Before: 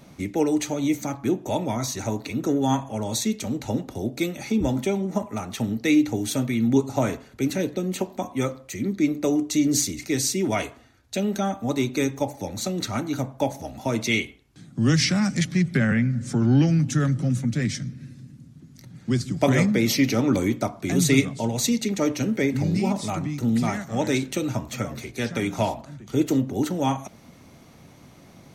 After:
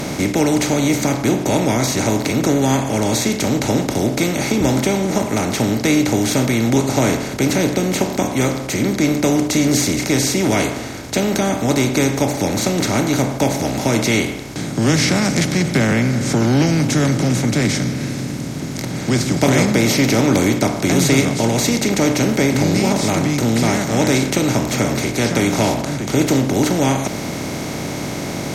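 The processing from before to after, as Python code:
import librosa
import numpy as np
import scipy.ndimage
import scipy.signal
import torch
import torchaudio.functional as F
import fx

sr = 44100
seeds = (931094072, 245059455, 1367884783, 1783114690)

y = fx.bin_compress(x, sr, power=0.4)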